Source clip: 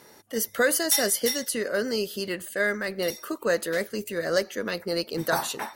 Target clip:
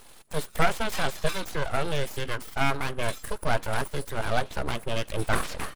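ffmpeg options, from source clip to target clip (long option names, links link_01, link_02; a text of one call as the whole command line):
ffmpeg -i in.wav -filter_complex "[0:a]acrossover=split=3500[link_01][link_02];[link_02]acompressor=threshold=-39dB:ratio=4:attack=1:release=60[link_03];[link_01][link_03]amix=inputs=2:normalize=0,asetrate=29433,aresample=44100,atempo=1.49831,equalizer=frequency=400:width_type=o:width=0.33:gain=-5,equalizer=frequency=6300:width_type=o:width=0.33:gain=-11,equalizer=frequency=10000:width_type=o:width=0.33:gain=7,aeval=exprs='abs(val(0))':channel_layout=same,volume=4dB" out.wav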